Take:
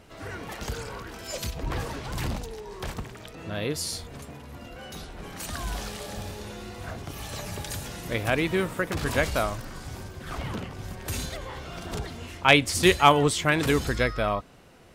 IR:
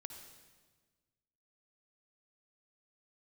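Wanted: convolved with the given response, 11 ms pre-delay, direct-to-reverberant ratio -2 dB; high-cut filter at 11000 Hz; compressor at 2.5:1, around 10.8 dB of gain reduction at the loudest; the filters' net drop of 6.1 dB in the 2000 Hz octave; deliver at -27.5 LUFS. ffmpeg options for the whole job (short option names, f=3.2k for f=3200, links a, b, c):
-filter_complex "[0:a]lowpass=11k,equalizer=f=2k:t=o:g=-8,acompressor=threshold=-31dB:ratio=2.5,asplit=2[a][b];[1:a]atrim=start_sample=2205,adelay=11[c];[b][c]afir=irnorm=-1:irlink=0,volume=6.5dB[d];[a][d]amix=inputs=2:normalize=0,volume=3.5dB"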